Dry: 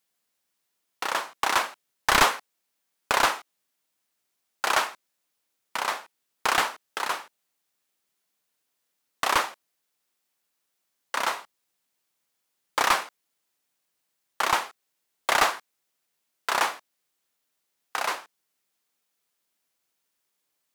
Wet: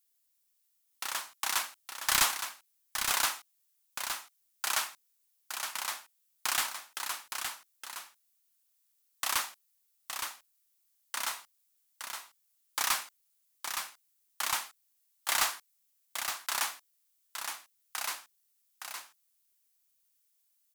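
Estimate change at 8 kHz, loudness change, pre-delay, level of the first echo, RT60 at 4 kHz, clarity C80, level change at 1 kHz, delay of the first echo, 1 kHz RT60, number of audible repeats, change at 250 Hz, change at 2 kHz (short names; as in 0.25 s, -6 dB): +1.5 dB, -7.0 dB, none, -6.5 dB, none, none, -11.0 dB, 0.866 s, none, 1, -14.5 dB, -8.0 dB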